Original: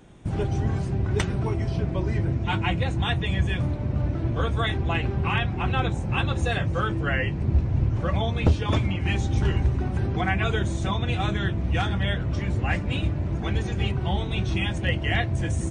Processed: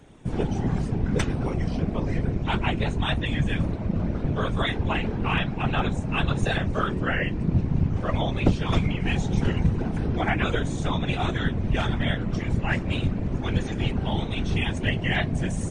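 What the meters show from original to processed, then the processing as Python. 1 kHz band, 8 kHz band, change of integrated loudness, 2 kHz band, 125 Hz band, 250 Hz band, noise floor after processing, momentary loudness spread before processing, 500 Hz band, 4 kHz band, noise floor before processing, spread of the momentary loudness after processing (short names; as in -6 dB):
0.0 dB, 0.0 dB, -0.5 dB, 0.0 dB, -1.5 dB, +2.5 dB, -31 dBFS, 3 LU, +0.5 dB, 0.0 dB, -29 dBFS, 3 LU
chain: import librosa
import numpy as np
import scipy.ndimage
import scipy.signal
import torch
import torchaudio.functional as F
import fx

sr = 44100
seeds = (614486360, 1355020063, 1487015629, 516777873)

y = fx.whisperise(x, sr, seeds[0])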